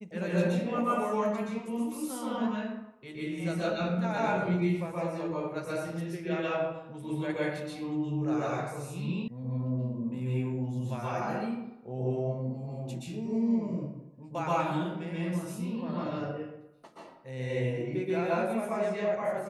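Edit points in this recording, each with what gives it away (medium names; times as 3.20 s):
9.28 s: sound stops dead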